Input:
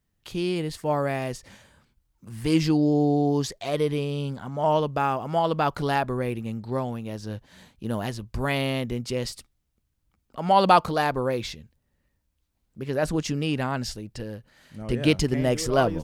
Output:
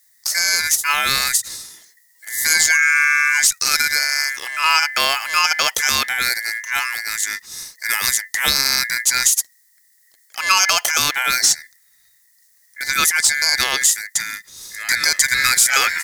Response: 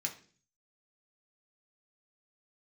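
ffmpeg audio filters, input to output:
-af "acontrast=77,aeval=exprs='val(0)*sin(2*PI*1900*n/s)':c=same,aexciter=amount=10.2:drive=5.1:freq=4.1k,aeval=exprs='2.11*(cos(1*acos(clip(val(0)/2.11,-1,1)))-cos(1*PI/2))+0.0211*(cos(4*acos(clip(val(0)/2.11,-1,1)))-cos(4*PI/2))+0.0596*(cos(7*acos(clip(val(0)/2.11,-1,1)))-cos(7*PI/2))':c=same,alimiter=level_in=5dB:limit=-1dB:release=50:level=0:latency=1,volume=-1dB"

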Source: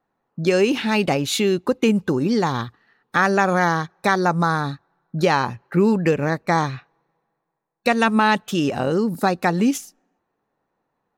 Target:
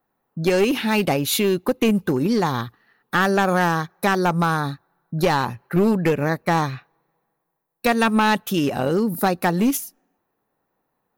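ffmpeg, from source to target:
-af "atempo=1,aexciter=amount=2.5:drive=9.2:freq=10k,aeval=exprs='clip(val(0),-1,0.168)':c=same"

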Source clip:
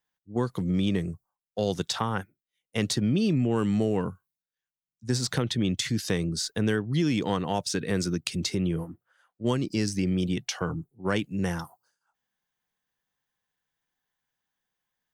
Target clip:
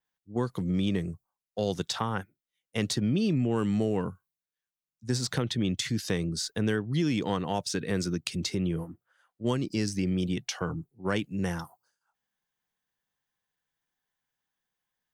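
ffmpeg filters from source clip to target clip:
-af "adynamicequalizer=threshold=0.00316:dfrequency=9700:dqfactor=0.99:tfrequency=9700:tqfactor=0.99:attack=5:release=100:ratio=0.375:range=1.5:mode=cutabove:tftype=bell,volume=-2dB"

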